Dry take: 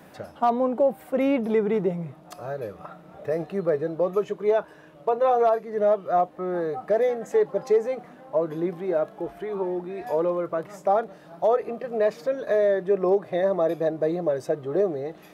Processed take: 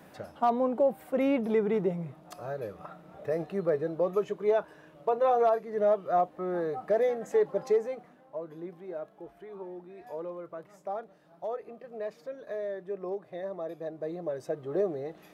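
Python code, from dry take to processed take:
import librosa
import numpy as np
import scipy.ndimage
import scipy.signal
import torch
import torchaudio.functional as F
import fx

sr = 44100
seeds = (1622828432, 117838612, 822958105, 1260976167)

y = fx.gain(x, sr, db=fx.line((7.67, -4.0), (8.35, -14.0), (13.74, -14.0), (14.78, -5.5)))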